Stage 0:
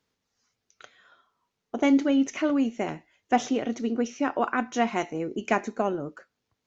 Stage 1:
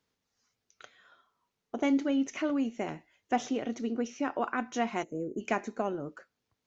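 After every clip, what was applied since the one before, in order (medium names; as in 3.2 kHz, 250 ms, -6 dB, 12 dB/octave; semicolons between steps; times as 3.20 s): time-frequency box 5.03–5.41 s, 660–6300 Hz -20 dB; in parallel at -2.5 dB: compression, threshold -32 dBFS, peak gain reduction 15 dB; on the sum: trim -7.5 dB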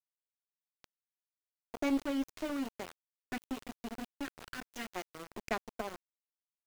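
time-frequency box 3.32–4.90 s, 450–1300 Hz -12 dB; Chebyshev shaper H 3 -19 dB, 4 -19 dB, 7 -31 dB, 8 -43 dB, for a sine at -15 dBFS; small samples zeroed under -36.5 dBFS; trim -2 dB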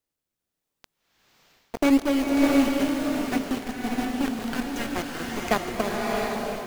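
in parallel at -5.5 dB: decimation with a swept rate 31×, swing 100% 0.85 Hz; on the sum: swelling reverb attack 690 ms, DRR -1.5 dB; trim +8.5 dB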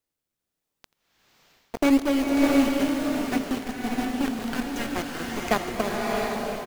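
delay 85 ms -21.5 dB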